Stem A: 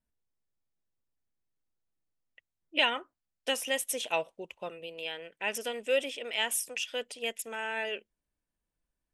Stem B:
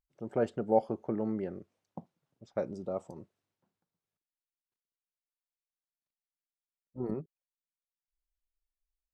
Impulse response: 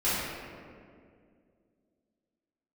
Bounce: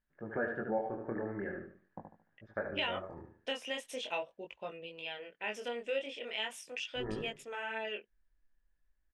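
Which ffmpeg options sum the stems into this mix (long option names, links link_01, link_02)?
-filter_complex "[0:a]lowpass=4300,volume=0dB[link_01];[1:a]asubboost=boost=8:cutoff=60,lowpass=frequency=1700:width_type=q:width=14,volume=0.5dB,asplit=2[link_02][link_03];[link_03]volume=-6.5dB,aecho=0:1:74|148|222|296|370:1|0.33|0.109|0.0359|0.0119[link_04];[link_01][link_02][link_04]amix=inputs=3:normalize=0,flanger=delay=18.5:depth=7.2:speed=0.42,acompressor=threshold=-35dB:ratio=2"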